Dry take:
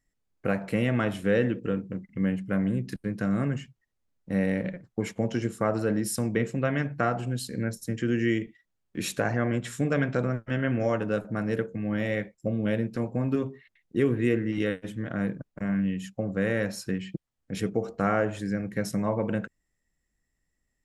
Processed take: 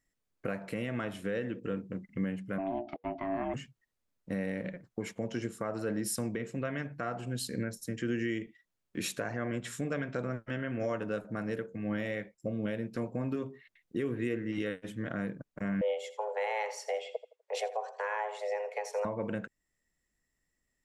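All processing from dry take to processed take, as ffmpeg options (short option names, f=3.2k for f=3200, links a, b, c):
-filter_complex "[0:a]asettb=1/sr,asplit=3[a][b][c];[a]atrim=end=2.584[d];[b]atrim=start=2.58:end=3.54,asetpts=PTS-STARTPTS,afade=t=in:d=0.004:c=qsin,afade=t=out:st=0.956:d=0.004:c=qsin,lowpass=f=3k:w=0.5412,lowpass=f=3k:w=1.3066,aeval=exprs='val(0)*sin(2*PI*480*n/s)':c=same[e];[c]atrim=start=3.536[f];[d][e]acrossfade=d=0.004:c1=hsin:c2=qsin[g];[g][f]acrossfade=d=0.004:c1=qsin:c2=hsin,asettb=1/sr,asplit=3[h][i][j];[h]atrim=end=15.814[k];[i]atrim=start=15.81:end=19.05,asetpts=PTS-STARTPTS,afade=t=in:d=0.004:c=qsin,afade=t=out:st=3.236:d=0.004:c=qsin,highpass=130,lowpass=7k,aecho=1:1:83|166|249:0.188|0.0565|0.017,atrim=end_sample=142884,afreqshift=310[l];[j]atrim=start=19.046[m];[k][l]acrossfade=d=0.004:c1=hsin:c2=qsin[n];[n][m]acrossfade=d=0.004:c1=qsin:c2=hsin,lowshelf=f=180:g=-6.5,bandreject=f=800:w=19,alimiter=limit=-23.5dB:level=0:latency=1:release=418"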